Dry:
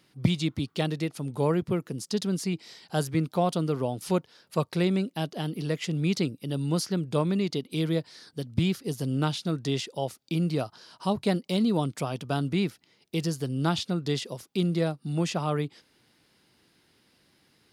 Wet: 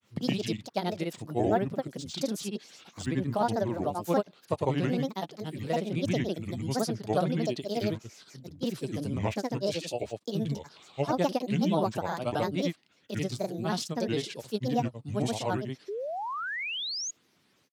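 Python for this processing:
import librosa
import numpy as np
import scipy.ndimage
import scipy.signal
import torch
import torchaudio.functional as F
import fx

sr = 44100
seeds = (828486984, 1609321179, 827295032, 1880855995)

y = scipy.signal.sosfilt(scipy.signal.butter(2, 130.0, 'highpass', fs=sr, output='sos'), x)
y = fx.granulator(y, sr, seeds[0], grain_ms=100.0, per_s=30.0, spray_ms=100.0, spread_st=7)
y = fx.dynamic_eq(y, sr, hz=660.0, q=1.9, threshold_db=-45.0, ratio=4.0, max_db=6)
y = fx.spec_paint(y, sr, seeds[1], shape='rise', start_s=15.88, length_s=1.23, low_hz=380.0, high_hz=6900.0, level_db=-34.0)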